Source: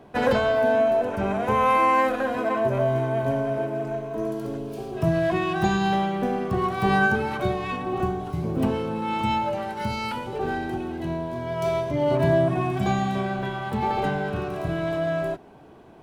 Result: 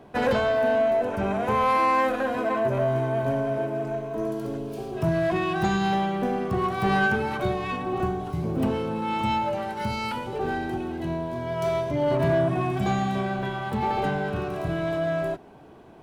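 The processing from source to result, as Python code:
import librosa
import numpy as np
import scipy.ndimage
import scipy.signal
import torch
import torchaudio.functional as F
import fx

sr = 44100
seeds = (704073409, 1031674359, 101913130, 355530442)

y = 10.0 ** (-15.0 / 20.0) * np.tanh(x / 10.0 ** (-15.0 / 20.0))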